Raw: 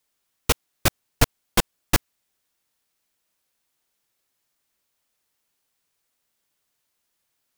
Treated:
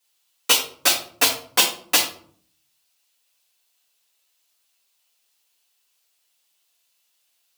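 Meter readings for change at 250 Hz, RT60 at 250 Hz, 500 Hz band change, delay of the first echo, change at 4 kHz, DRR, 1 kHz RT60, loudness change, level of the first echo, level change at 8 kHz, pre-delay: -6.0 dB, 0.85 s, -0.5 dB, none, +9.5 dB, -3.0 dB, 0.50 s, +5.5 dB, none, +7.5 dB, 3 ms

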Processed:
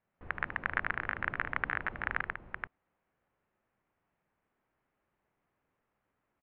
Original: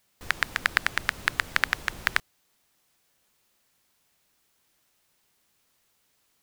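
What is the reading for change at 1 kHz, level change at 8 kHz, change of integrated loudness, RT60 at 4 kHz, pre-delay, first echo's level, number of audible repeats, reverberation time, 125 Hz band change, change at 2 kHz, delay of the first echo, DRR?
-4.5 dB, under -35 dB, -8.5 dB, none, none, -8.5 dB, 3, none, -2.0 dB, -7.0 dB, 76 ms, none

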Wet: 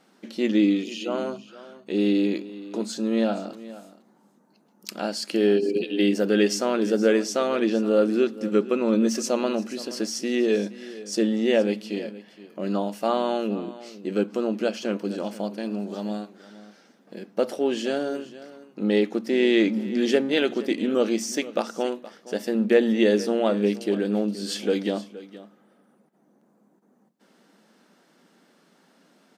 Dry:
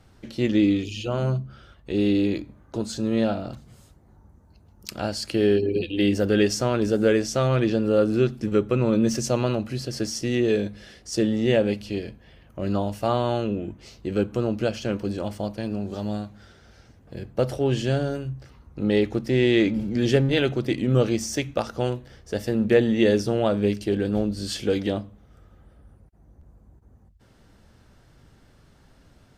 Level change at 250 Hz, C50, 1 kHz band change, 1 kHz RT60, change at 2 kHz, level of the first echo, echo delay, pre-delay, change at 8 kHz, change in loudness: 0.0 dB, none, 0.0 dB, none, 0.0 dB, -17.0 dB, 0.471 s, none, 0.0 dB, -0.5 dB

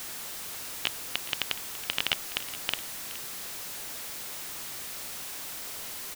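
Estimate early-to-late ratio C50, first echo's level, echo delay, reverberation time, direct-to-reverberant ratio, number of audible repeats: none, -16.0 dB, 0.42 s, none, none, 1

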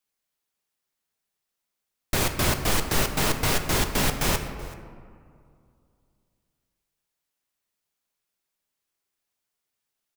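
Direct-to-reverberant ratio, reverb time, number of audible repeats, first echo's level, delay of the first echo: 6.0 dB, 2.2 s, 1, -20.5 dB, 0.38 s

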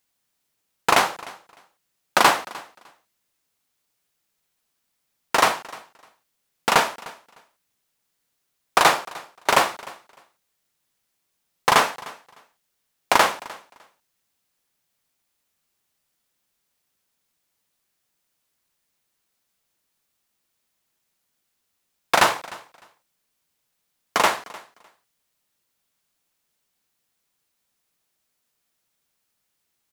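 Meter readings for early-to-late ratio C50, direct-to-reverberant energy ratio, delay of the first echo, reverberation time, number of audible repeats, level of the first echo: none, none, 0.303 s, none, 1, -21.0 dB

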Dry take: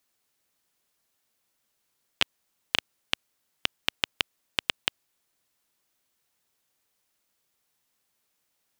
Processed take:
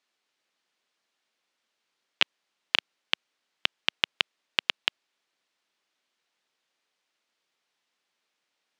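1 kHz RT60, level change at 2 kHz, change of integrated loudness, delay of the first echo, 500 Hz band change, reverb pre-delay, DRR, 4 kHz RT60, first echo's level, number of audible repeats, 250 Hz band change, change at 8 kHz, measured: none, +2.5 dB, +2.0 dB, none, -1.0 dB, none, none, none, none, none, -3.5 dB, -6.0 dB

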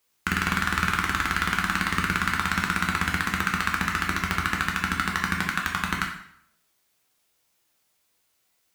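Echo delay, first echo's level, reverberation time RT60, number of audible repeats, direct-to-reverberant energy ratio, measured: none, none, 0.65 s, none, -0.5 dB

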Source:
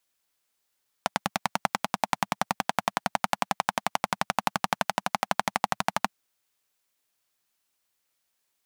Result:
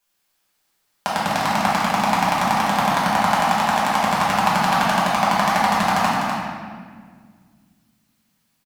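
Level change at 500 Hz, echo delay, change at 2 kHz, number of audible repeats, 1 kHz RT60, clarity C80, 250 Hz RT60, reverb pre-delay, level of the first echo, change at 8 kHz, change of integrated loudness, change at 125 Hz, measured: +10.0 dB, 0.25 s, +10.0 dB, 1, 1.6 s, -1.0 dB, 2.8 s, 5 ms, -5.5 dB, +7.0 dB, +10.5 dB, +13.0 dB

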